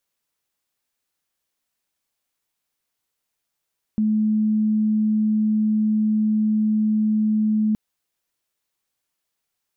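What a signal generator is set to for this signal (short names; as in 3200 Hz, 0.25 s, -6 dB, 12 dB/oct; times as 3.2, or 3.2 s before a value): tone sine 215 Hz -16.5 dBFS 3.77 s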